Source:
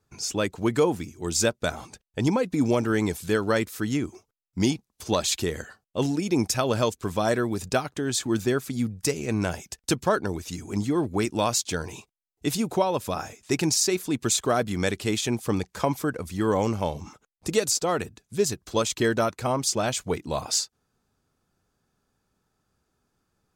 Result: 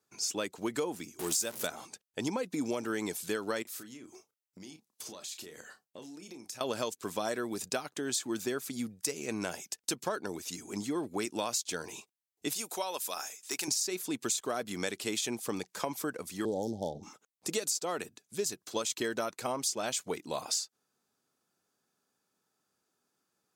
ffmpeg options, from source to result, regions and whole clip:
ffmpeg -i in.wav -filter_complex "[0:a]asettb=1/sr,asplit=3[link_01][link_02][link_03];[link_01]atrim=end=1.194[link_04];[link_02]atrim=start=1.19:end=1.67,asetpts=PTS-STARTPTS,afade=type=in:duration=0.004:curve=qsin,afade=type=out:start_time=0.476:duration=0.004:curve=qsin,aeval=exprs='val(0)+0.5*0.0316*sgn(val(0))':channel_layout=same,equalizer=frequency=12000:width_type=o:width=1.2:gain=8.5[link_05];[link_03]atrim=start=1.666[link_06];[link_04][link_05]acrossfade=duration=0.004:curve1=hsin:curve2=qsin[link_07];[link_07][link_06]acrossfade=duration=0.004:curve1=qsin:curve2=hsin,asettb=1/sr,asplit=3[link_08][link_09][link_10];[link_08]atrim=end=3.624[link_11];[link_09]atrim=start=3.62:end=6.61,asetpts=PTS-STARTPTS,afade=type=in:duration=0.004:curve=qsin,afade=type=out:start_time=2.986:duration=0.004:curve=qsin,acompressor=threshold=-37dB:ratio=12:attack=3.2:release=140:knee=1:detection=peak,asplit=2[link_12][link_13];[link_13]adelay=32,volume=-9dB[link_14];[link_12][link_14]amix=inputs=2:normalize=0,atrim=end_sample=131859[link_15];[link_10]atrim=start=6.606[link_16];[link_11][link_15]acrossfade=duration=0.004:curve1=hsin:curve2=qsin[link_17];[link_17][link_16]acrossfade=duration=0.004:curve1=qsin:curve2=hsin,asettb=1/sr,asplit=3[link_18][link_19][link_20];[link_18]atrim=end=12.534[link_21];[link_19]atrim=start=12.53:end=13.68,asetpts=PTS-STARTPTS,afade=type=in:duration=0.004:curve=qsin,afade=type=out:start_time=1.146:duration=0.004:curve=qsin,highpass=frequency=1000:poles=1,highshelf=frequency=5600:gain=8.5,deesser=0.5[link_22];[link_20]atrim=start=13.676[link_23];[link_21][link_22]acrossfade=duration=0.004:curve1=hsin:curve2=qsin[link_24];[link_24][link_23]acrossfade=duration=0.004:curve1=qsin:curve2=hsin,asettb=1/sr,asplit=3[link_25][link_26][link_27];[link_25]atrim=end=16.454[link_28];[link_26]atrim=start=16.45:end=17.03,asetpts=PTS-STARTPTS,afade=type=in:duration=0.004:curve=qsin,afade=type=out:start_time=0.576:duration=0.004:curve=qsin,lowshelf=frequency=170:gain=8,adynamicsmooth=sensitivity=6.5:basefreq=1900,asuperstop=centerf=1700:order=20:qfactor=0.67[link_29];[link_27]atrim=start=17.026[link_30];[link_28][link_29]acrossfade=duration=0.004:curve1=hsin:curve2=qsin[link_31];[link_31][link_30]acrossfade=duration=0.004:curve1=qsin:curve2=hsin,highpass=230,highshelf=frequency=3600:gain=7,acompressor=threshold=-23dB:ratio=6,volume=-6dB" out.wav

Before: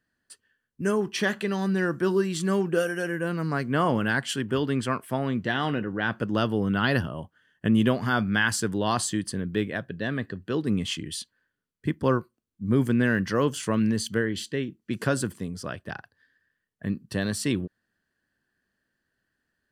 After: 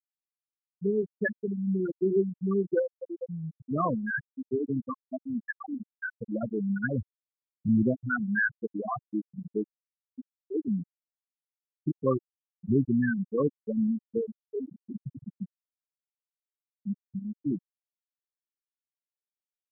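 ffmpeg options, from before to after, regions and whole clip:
ffmpeg -i in.wav -filter_complex "[0:a]asettb=1/sr,asplit=3[link_01][link_02][link_03];[link_01]atrim=end=14.594[link_04];[link_02]atrim=start=14.59:end=15.45,asetpts=PTS-STARTPTS,afade=type=in:duration=0.004:curve=qsin,afade=type=out:start_time=0.856:duration=0.004:curve=qsin,aeval=exprs='val(0)+0.5*0.0398*sgn(val(0))':channel_layout=same,asplit=2[link_05][link_06];[link_06]adelay=15,volume=-3dB[link_07];[link_05][link_07]amix=inputs=2:normalize=0,atrim=end_sample=37926,acompressor=threshold=-24dB:ratio=20:attack=3.2:release=140:knee=1:detection=peak[link_08];[link_03]atrim=start=15.446[link_09];[link_04][link_08]acrossfade=duration=0.004:curve1=hsin:curve2=qsin[link_10];[link_10][link_09]acrossfade=duration=0.004:curve1=qsin:curve2=hsin,afftfilt=real='re*gte(hypot(re,im),0.355)':imag='im*gte(hypot(re,im),0.355)':win_size=1024:overlap=0.75,bass=frequency=250:gain=-3,treble=frequency=4000:gain=12" out.wav

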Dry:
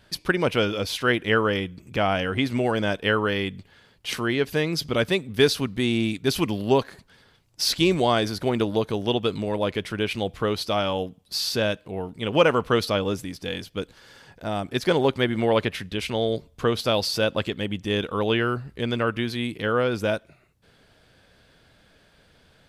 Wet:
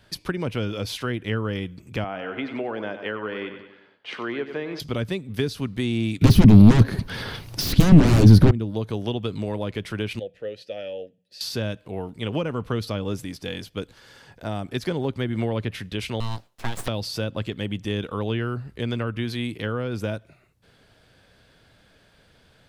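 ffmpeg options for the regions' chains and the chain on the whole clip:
ffmpeg -i in.wav -filter_complex "[0:a]asettb=1/sr,asplit=3[link_01][link_02][link_03];[link_01]atrim=end=2.044[link_04];[link_02]atrim=start=2.04:end=4.8,asetpts=PTS-STARTPTS,afade=type=in:duration=0.004:curve=qsin,afade=type=out:start_time=2.756:duration=0.004:curve=qsin,highpass=320,lowpass=2300,aecho=1:1:94|188|282|376|470:0.266|0.136|0.0692|0.0353|0.018,atrim=end_sample=121716[link_05];[link_03]atrim=start=4.796[link_06];[link_04][link_05]acrossfade=duration=0.004:curve1=hsin:curve2=qsin[link_07];[link_07][link_06]acrossfade=duration=0.004:curve1=qsin:curve2=hsin,asettb=1/sr,asplit=3[link_08][link_09][link_10];[link_08]atrim=end=6.214[link_11];[link_09]atrim=start=6.21:end=8.51,asetpts=PTS-STARTPTS,afade=type=in:duration=0.004:curve=qsin,afade=type=out:start_time=2.296:duration=0.004:curve=qsin,equalizer=frequency=7500:width=3.5:gain=-10.5,acontrast=71,aeval=exprs='0.708*sin(PI/2*5.62*val(0)/0.708)':channel_layout=same[link_12];[link_10]atrim=start=8.506[link_13];[link_11][link_12]acrossfade=duration=0.004:curve1=hsin:curve2=qsin[link_14];[link_14][link_13]acrossfade=duration=0.004:curve1=qsin:curve2=hsin,asettb=1/sr,asplit=3[link_15][link_16][link_17];[link_15]atrim=end=10.194[link_18];[link_16]atrim=start=10.19:end=11.41,asetpts=PTS-STARTPTS,afade=type=in:duration=0.004:curve=qsin,afade=type=out:start_time=1.216:duration=0.004:curve=qsin,asplit=3[link_19][link_20][link_21];[link_19]bandpass=frequency=530:width_type=q:width=8,volume=0dB[link_22];[link_20]bandpass=frequency=1840:width_type=q:width=8,volume=-6dB[link_23];[link_21]bandpass=frequency=2480:width_type=q:width=8,volume=-9dB[link_24];[link_22][link_23][link_24]amix=inputs=3:normalize=0,bass=frequency=250:gain=10,treble=frequency=4000:gain=9,bandreject=frequency=60:width_type=h:width=6,bandreject=frequency=120:width_type=h:width=6,bandreject=frequency=180:width_type=h:width=6[link_25];[link_17]atrim=start=11.406[link_26];[link_18][link_25]acrossfade=duration=0.004:curve1=hsin:curve2=qsin[link_27];[link_27][link_26]acrossfade=duration=0.004:curve1=qsin:curve2=hsin,asettb=1/sr,asplit=3[link_28][link_29][link_30];[link_28]atrim=end=16.204[link_31];[link_29]atrim=start=16.2:end=16.88,asetpts=PTS-STARTPTS,afade=type=in:duration=0.004:curve=qsin,afade=type=out:start_time=0.676:duration=0.004:curve=qsin,highpass=160,lowshelf=frequency=330:gain=-8,aeval=exprs='abs(val(0))':channel_layout=same[link_32];[link_30]atrim=start=16.876[link_33];[link_31][link_32]acrossfade=duration=0.004:curve1=hsin:curve2=qsin[link_34];[link_34][link_33]acrossfade=duration=0.004:curve1=qsin:curve2=hsin,equalizer=frequency=110:width_type=o:width=0.22:gain=4.5,acrossover=split=290[link_35][link_36];[link_36]acompressor=threshold=-28dB:ratio=10[link_37];[link_35][link_37]amix=inputs=2:normalize=0" out.wav

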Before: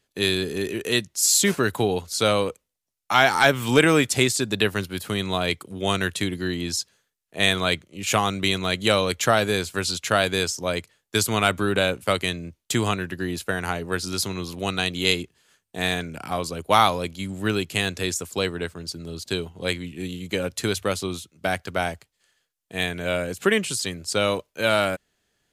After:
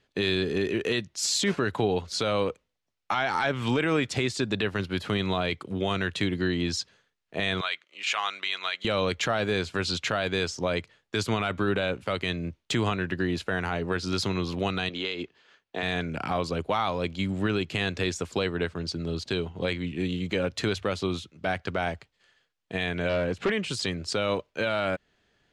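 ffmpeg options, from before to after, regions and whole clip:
ffmpeg -i in.wav -filter_complex "[0:a]asettb=1/sr,asplit=3[link_01][link_02][link_03];[link_01]atrim=end=7.614[link_04];[link_02]atrim=start=7.61:end=8.85,asetpts=PTS-STARTPTS,afade=type=in:duration=0.004:curve=qsin,afade=type=out:start_time=1.236:duration=0.004:curve=qsin,highpass=1300,highshelf=frequency=7500:gain=-7.5[link_05];[link_03]atrim=start=8.846[link_06];[link_04][link_05]acrossfade=duration=0.004:curve1=hsin:curve2=qsin[link_07];[link_07][link_06]acrossfade=duration=0.004:curve1=qsin:curve2=hsin,asettb=1/sr,asplit=3[link_08][link_09][link_10];[link_08]atrim=end=14.894[link_11];[link_09]atrim=start=14.89:end=15.83,asetpts=PTS-STARTPTS,afade=type=in:duration=0.004:curve=qsin,afade=type=out:start_time=0.936:duration=0.004:curve=qsin,acrossover=split=260 6700:gain=0.224 1 0.0708[link_12][link_13][link_14];[link_12][link_13][link_14]amix=inputs=3:normalize=0,acompressor=threshold=-29dB:ratio=5:attack=3.2:release=140:knee=1:detection=peak[link_15];[link_10]atrim=start=15.826[link_16];[link_11][link_15]acrossfade=duration=0.004:curve1=hsin:curve2=qsin[link_17];[link_17][link_16]acrossfade=duration=0.004:curve1=qsin:curve2=hsin,asettb=1/sr,asplit=3[link_18][link_19][link_20];[link_18]atrim=end=23.094[link_21];[link_19]atrim=start=23.09:end=23.5,asetpts=PTS-STARTPTS,afade=type=in:duration=0.004:curve=qsin,afade=type=out:start_time=0.406:duration=0.004:curve=qsin,aemphasis=mode=reproduction:type=cd,volume=22dB,asoftclip=hard,volume=-22dB[link_22];[link_20]atrim=start=23.496[link_23];[link_21][link_22]acrossfade=duration=0.004:curve1=hsin:curve2=qsin[link_24];[link_24][link_23]acrossfade=duration=0.004:curve1=qsin:curve2=hsin,lowpass=3900,acompressor=threshold=-30dB:ratio=2,alimiter=limit=-20dB:level=0:latency=1:release=13,volume=4.5dB" out.wav

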